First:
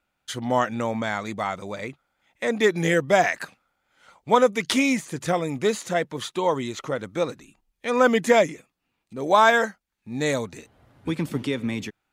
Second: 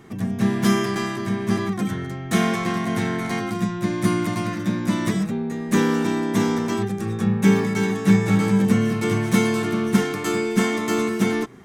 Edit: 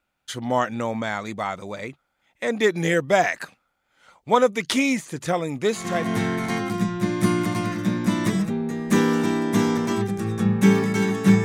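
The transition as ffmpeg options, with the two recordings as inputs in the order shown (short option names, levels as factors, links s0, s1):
-filter_complex "[0:a]apad=whole_dur=11.44,atrim=end=11.44,atrim=end=6.27,asetpts=PTS-STARTPTS[s0];[1:a]atrim=start=2.5:end=8.25,asetpts=PTS-STARTPTS[s1];[s0][s1]acrossfade=d=0.58:c1=qsin:c2=qsin"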